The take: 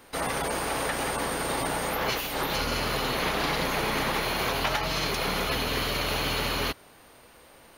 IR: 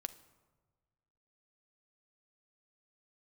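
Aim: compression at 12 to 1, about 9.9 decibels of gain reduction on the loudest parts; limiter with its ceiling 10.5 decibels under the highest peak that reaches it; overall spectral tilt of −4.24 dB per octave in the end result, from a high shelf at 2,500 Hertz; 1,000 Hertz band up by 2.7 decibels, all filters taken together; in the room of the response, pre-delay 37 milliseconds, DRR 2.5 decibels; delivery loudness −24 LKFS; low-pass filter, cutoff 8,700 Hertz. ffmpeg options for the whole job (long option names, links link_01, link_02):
-filter_complex "[0:a]lowpass=8700,equalizer=frequency=1000:width_type=o:gain=4.5,highshelf=frequency=2500:gain=-6.5,acompressor=threshold=-33dB:ratio=12,alimiter=level_in=9.5dB:limit=-24dB:level=0:latency=1,volume=-9.5dB,asplit=2[link_01][link_02];[1:a]atrim=start_sample=2205,adelay=37[link_03];[link_02][link_03]afir=irnorm=-1:irlink=0,volume=0dB[link_04];[link_01][link_04]amix=inputs=2:normalize=0,volume=16dB"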